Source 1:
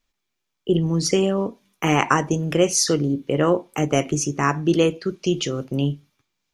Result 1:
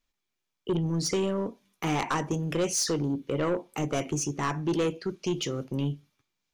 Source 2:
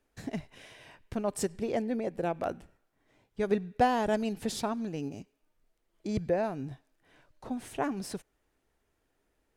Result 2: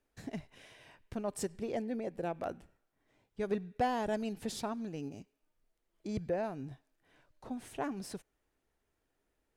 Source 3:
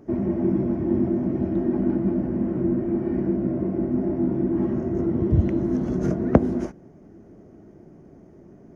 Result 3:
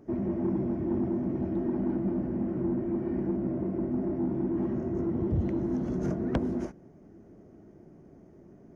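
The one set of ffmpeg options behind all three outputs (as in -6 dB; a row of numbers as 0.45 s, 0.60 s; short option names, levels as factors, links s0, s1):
-af "asoftclip=type=tanh:threshold=0.158,volume=0.562"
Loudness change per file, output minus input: -8.0 LU, -5.5 LU, -6.5 LU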